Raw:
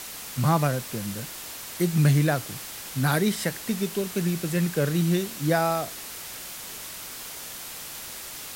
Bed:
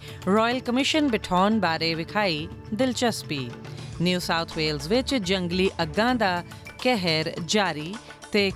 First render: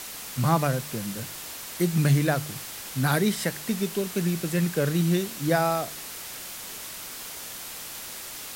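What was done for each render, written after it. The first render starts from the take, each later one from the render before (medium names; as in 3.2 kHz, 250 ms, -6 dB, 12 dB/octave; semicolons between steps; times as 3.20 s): de-hum 50 Hz, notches 3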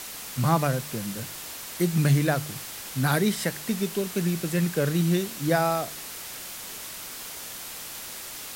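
no audible change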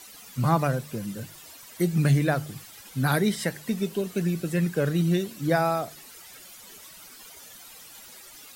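noise reduction 13 dB, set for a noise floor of -39 dBFS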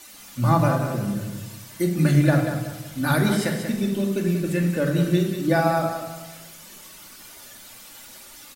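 on a send: feedback delay 187 ms, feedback 33%, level -8 dB; on the sum: simulated room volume 1900 m³, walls furnished, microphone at 2.5 m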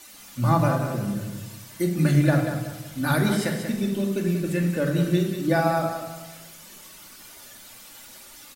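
trim -1.5 dB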